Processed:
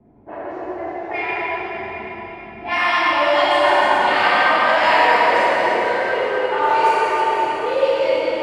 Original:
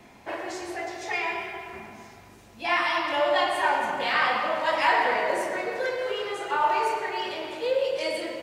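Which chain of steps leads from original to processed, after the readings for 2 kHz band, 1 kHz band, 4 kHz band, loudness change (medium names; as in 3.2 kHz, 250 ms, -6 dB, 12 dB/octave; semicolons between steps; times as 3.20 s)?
+8.5 dB, +9.5 dB, +7.0 dB, +9.0 dB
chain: level-controlled noise filter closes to 390 Hz, open at -19 dBFS; plate-style reverb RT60 4.7 s, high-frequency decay 0.9×, DRR -8.5 dB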